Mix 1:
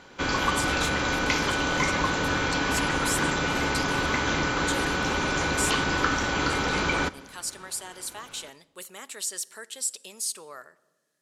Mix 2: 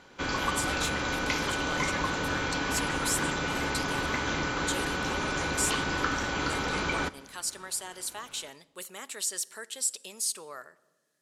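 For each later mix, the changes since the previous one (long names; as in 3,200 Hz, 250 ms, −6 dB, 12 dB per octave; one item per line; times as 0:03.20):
background −4.5 dB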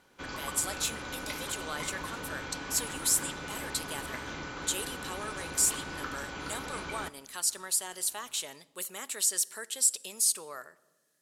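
speech: add high-shelf EQ 8,900 Hz +10 dB
background −9.5 dB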